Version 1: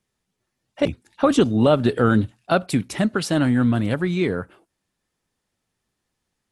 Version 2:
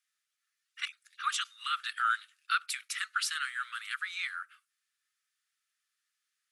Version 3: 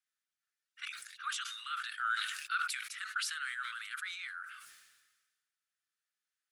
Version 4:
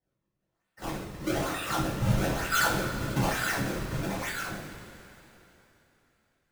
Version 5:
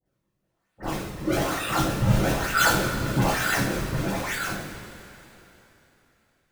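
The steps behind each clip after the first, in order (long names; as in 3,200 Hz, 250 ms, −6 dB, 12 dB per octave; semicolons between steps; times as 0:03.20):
Butterworth high-pass 1,200 Hz 96 dB per octave; level −3 dB
parametric band 1,500 Hz +5.5 dB 0.24 octaves; level that may fall only so fast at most 44 dB per second; level −9 dB
feedback delay that plays each chunk backwards 152 ms, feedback 47%, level −12.5 dB; sample-and-hold swept by an LFO 34×, swing 160% 1.1 Hz; coupled-rooms reverb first 0.41 s, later 3.4 s, from −17 dB, DRR −9 dB
all-pass dispersion highs, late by 59 ms, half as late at 1,600 Hz; level +5 dB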